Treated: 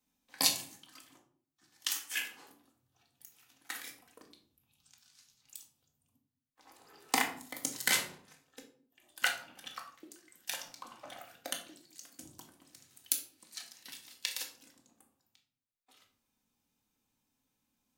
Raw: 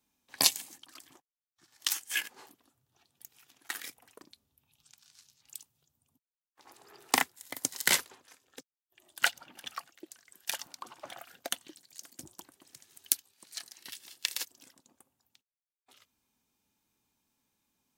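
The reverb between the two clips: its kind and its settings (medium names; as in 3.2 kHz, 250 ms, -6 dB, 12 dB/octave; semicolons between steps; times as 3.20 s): simulated room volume 580 m³, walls furnished, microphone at 2 m; trim -5 dB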